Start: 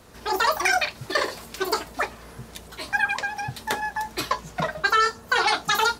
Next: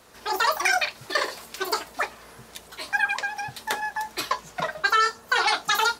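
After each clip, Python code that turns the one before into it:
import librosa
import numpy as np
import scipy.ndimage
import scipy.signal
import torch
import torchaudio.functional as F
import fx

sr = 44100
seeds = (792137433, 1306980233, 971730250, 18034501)

y = fx.low_shelf(x, sr, hz=290.0, db=-12.0)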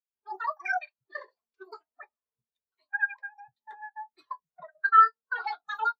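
y = fx.spectral_expand(x, sr, expansion=2.5)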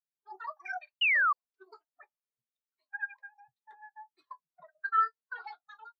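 y = fx.fade_out_tail(x, sr, length_s=0.69)
y = fx.spec_paint(y, sr, seeds[0], shape='fall', start_s=1.01, length_s=0.32, low_hz=1100.0, high_hz=3000.0, level_db=-16.0)
y = y * 10.0 ** (-9.0 / 20.0)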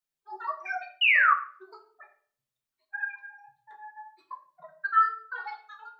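y = fx.room_shoebox(x, sr, seeds[1], volume_m3=55.0, walls='mixed', distance_m=0.58)
y = y * 10.0 ** (3.0 / 20.0)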